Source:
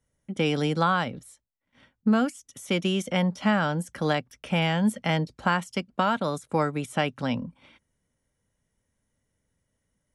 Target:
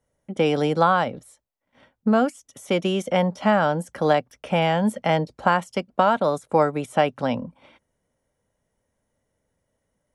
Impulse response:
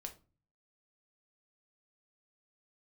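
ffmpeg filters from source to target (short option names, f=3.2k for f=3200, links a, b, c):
-af "equalizer=f=640:w=0.77:g=10,volume=-1dB"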